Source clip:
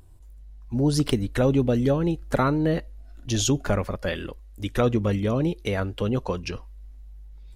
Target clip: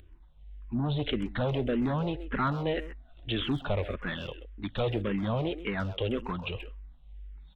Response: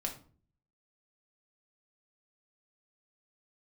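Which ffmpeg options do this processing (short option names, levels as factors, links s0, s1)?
-filter_complex "[0:a]crystalizer=i=4:c=0,aresample=8000,asoftclip=type=tanh:threshold=0.0794,aresample=44100,asplit=2[s0][s1];[s1]adelay=130,highpass=300,lowpass=3400,asoftclip=type=hard:threshold=0.0501,volume=0.282[s2];[s0][s2]amix=inputs=2:normalize=0,asplit=2[s3][s4];[s4]afreqshift=-1.8[s5];[s3][s5]amix=inputs=2:normalize=1"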